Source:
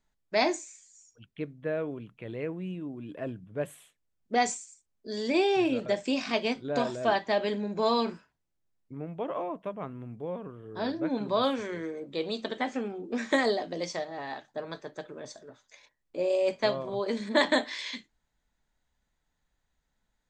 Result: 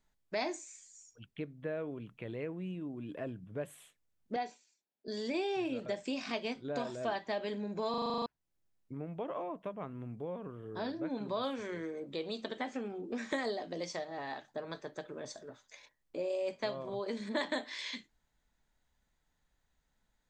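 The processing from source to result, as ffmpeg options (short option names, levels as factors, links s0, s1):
-filter_complex "[0:a]asettb=1/sr,asplit=3[s0][s1][s2];[s0]atrim=end=4.364[s3];[s1]atrim=start=4.36:end=5.08,asetpts=PTS-STARTPTS,afade=t=in:d=0.004:c=qsin,afade=t=out:st=0.716:d=0.004:c=qsin,highpass=310,equalizer=f=510:t=q:w=4:g=-3,equalizer=f=1200:t=q:w=4:g=-10,equalizer=f=2100:t=q:w=4:g=-8,equalizer=f=3200:t=q:w=4:g=-5,lowpass=f=3900:w=0.5412,lowpass=f=3900:w=1.3066[s4];[s2]atrim=start=5.076[s5];[s3][s4]acrossfade=d=0.004:c1=hsin:c2=qsin[s6];[s6][s5]acrossfade=d=0.004:c1=qsin:c2=hsin,asplit=10[s7][s8][s9][s10][s11][s12][s13][s14][s15][s16];[s7]atrim=end=7.942[s17];[s8]atrim=start=7.898:end=7.942[s18];[s9]atrim=start=7.898:end=7.942[s19];[s10]atrim=start=7.898:end=7.942[s20];[s11]atrim=start=7.898:end=7.942[s21];[s12]atrim=start=7.898:end=7.942[s22];[s13]atrim=start=7.898:end=7.942[s23];[s14]atrim=start=7.898:end=7.942[s24];[s15]atrim=start=7.898:end=7.942[s25];[s16]atrim=start=8.258[s26];[s17][s18]acrossfade=d=0.004:c1=hsin:c2=hsin[s27];[s27][s19]acrossfade=d=0.004:c1=hsin:c2=hsin[s28];[s28][s20]acrossfade=d=0.004:c1=hsin:c2=hsin[s29];[s29][s21]acrossfade=d=0.004:c1=hsin:c2=hsin[s30];[s30][s22]acrossfade=d=0.004:c1=hsin:c2=hsin[s31];[s31][s23]acrossfade=d=0.004:c1=hsin:c2=hsin[s32];[s32][s24]acrossfade=d=0.004:c1=hsin:c2=hsin[s33];[s33][s25]acrossfade=d=0.004:c1=hsin:c2=hsin[s34];[s34][s26]acrossfade=d=0.004:c1=hsin:c2=hsin,acompressor=threshold=0.01:ratio=2"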